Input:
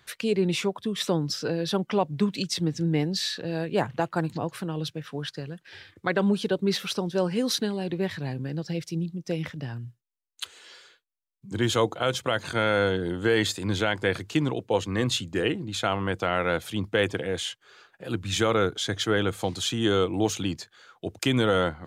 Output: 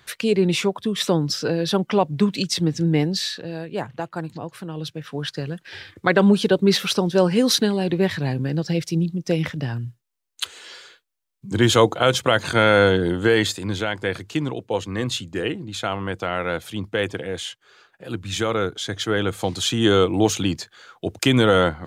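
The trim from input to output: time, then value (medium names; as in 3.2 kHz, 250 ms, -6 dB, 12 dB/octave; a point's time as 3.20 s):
3.06 s +5.5 dB
3.63 s -2.5 dB
4.54 s -2.5 dB
5.48 s +8 dB
13.05 s +8 dB
13.78 s +0.5 dB
18.88 s +0.5 dB
19.82 s +6.5 dB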